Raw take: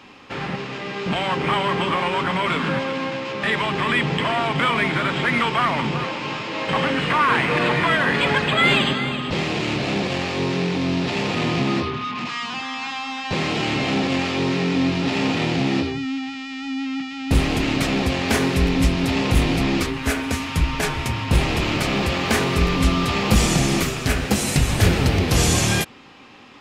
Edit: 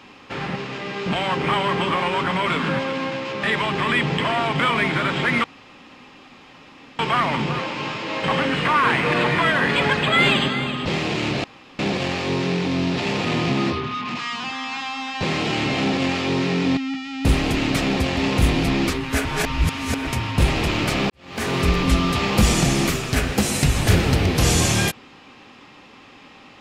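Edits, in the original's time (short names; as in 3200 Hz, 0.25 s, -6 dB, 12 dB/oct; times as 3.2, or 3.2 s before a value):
5.44 insert room tone 1.55 s
9.89 insert room tone 0.35 s
14.87–16.83 cut
18.23–19.1 cut
20.18–21 reverse
22.03–22.49 fade in quadratic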